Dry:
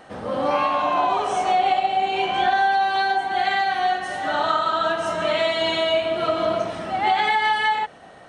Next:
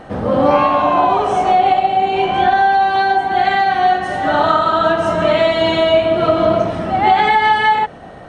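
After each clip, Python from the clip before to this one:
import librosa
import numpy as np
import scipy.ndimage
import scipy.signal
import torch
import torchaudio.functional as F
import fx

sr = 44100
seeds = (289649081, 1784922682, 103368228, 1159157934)

y = fx.tilt_eq(x, sr, slope=-2.5)
y = fx.rider(y, sr, range_db=3, speed_s=2.0)
y = y * 10.0 ** (6.5 / 20.0)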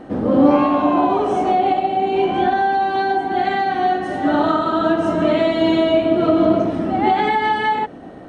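y = fx.peak_eq(x, sr, hz=290.0, db=14.0, octaves=1.1)
y = y * 10.0 ** (-7.0 / 20.0)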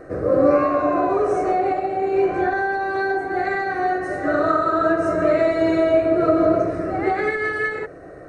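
y = fx.fixed_phaser(x, sr, hz=870.0, stages=6)
y = y * 10.0 ** (2.0 / 20.0)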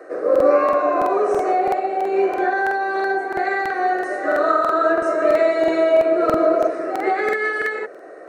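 y = fx.octave_divider(x, sr, octaves=1, level_db=-4.0)
y = scipy.signal.sosfilt(scipy.signal.butter(4, 360.0, 'highpass', fs=sr, output='sos'), y)
y = fx.buffer_crackle(y, sr, first_s=0.31, period_s=0.33, block=2048, kind='repeat')
y = y * 10.0 ** (2.0 / 20.0)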